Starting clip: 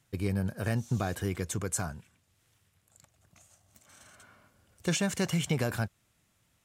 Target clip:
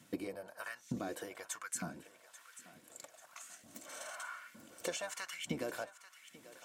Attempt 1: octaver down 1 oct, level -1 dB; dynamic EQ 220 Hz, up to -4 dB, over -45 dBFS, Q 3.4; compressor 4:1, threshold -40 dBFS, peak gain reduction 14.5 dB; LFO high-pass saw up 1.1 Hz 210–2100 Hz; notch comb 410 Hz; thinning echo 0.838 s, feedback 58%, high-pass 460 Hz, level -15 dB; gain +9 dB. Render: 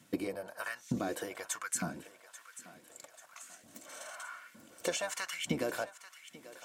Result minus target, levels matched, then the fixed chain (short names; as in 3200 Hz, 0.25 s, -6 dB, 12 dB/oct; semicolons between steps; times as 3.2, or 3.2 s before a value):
compressor: peak gain reduction -5 dB
octaver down 1 oct, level -1 dB; dynamic EQ 220 Hz, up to -4 dB, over -45 dBFS, Q 3.4; compressor 4:1, threshold -47 dBFS, peak gain reduction 20 dB; LFO high-pass saw up 1.1 Hz 210–2100 Hz; notch comb 410 Hz; thinning echo 0.838 s, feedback 58%, high-pass 460 Hz, level -15 dB; gain +9 dB